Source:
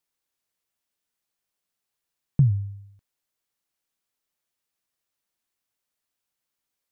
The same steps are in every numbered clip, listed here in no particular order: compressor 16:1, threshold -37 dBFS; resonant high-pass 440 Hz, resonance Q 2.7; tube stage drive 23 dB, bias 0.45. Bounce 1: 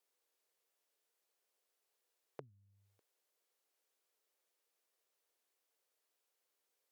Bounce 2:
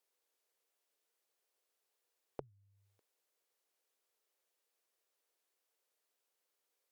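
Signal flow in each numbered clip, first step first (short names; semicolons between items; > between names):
compressor > tube stage > resonant high-pass; compressor > resonant high-pass > tube stage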